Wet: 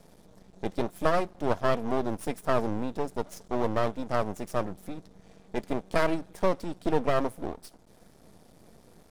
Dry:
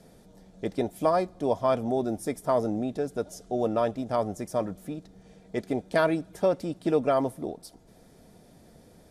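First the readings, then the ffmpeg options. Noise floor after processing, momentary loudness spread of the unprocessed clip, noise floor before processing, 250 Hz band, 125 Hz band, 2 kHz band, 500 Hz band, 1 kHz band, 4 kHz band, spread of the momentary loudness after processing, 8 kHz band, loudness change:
-58 dBFS, 11 LU, -56 dBFS, -2.5 dB, 0.0 dB, +2.0 dB, -3.0 dB, -0.5 dB, +1.5 dB, 10 LU, -1.5 dB, -2.0 dB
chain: -af "aeval=exprs='max(val(0),0)':c=same,volume=2.5dB"

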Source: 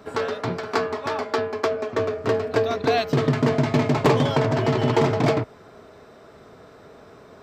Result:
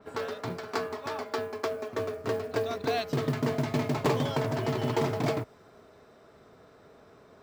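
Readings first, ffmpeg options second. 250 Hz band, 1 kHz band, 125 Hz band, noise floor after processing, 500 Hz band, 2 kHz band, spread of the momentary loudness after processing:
-8.5 dB, -8.5 dB, -8.5 dB, -57 dBFS, -8.5 dB, -8.5 dB, 7 LU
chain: -af "acrusher=bits=8:mode=log:mix=0:aa=0.000001,adynamicequalizer=threshold=0.00708:dfrequency=4400:dqfactor=0.7:tfrequency=4400:tqfactor=0.7:attack=5:release=100:ratio=0.375:range=2:mode=boostabove:tftype=highshelf,volume=-8.5dB"

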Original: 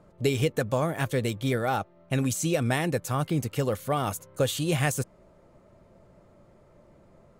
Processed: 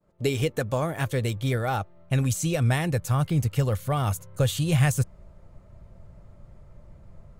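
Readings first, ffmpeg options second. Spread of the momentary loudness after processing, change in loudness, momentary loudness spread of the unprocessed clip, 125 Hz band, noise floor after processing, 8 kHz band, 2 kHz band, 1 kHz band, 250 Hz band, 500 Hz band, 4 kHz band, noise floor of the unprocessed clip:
6 LU, +2.0 dB, 4 LU, +5.5 dB, -52 dBFS, 0.0 dB, 0.0 dB, -0.5 dB, 0.0 dB, -1.5 dB, 0.0 dB, -58 dBFS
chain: -af "asubboost=boost=7.5:cutoff=110,agate=range=-33dB:threshold=-48dB:ratio=3:detection=peak"

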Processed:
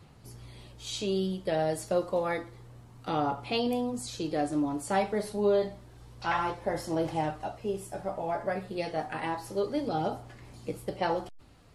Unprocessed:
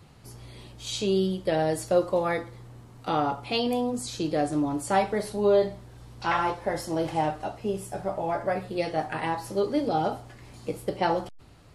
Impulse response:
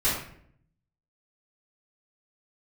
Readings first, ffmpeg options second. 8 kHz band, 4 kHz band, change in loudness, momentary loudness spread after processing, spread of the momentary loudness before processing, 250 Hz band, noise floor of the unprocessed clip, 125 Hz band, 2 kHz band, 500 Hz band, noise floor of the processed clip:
-4.0 dB, -4.0 dB, -4.0 dB, 14 LU, 15 LU, -3.5 dB, -51 dBFS, -3.5 dB, -3.5 dB, -4.0 dB, -53 dBFS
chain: -af "aphaser=in_gain=1:out_gain=1:delay=4.9:decay=0.24:speed=0.29:type=sinusoidal,volume=-4dB"

